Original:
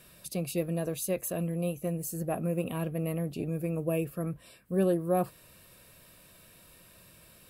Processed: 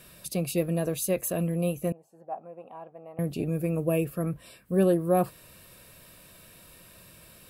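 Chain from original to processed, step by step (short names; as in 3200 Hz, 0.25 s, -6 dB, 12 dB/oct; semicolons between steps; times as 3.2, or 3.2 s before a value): 1.92–3.19 band-pass 820 Hz, Q 5.2; gain +4 dB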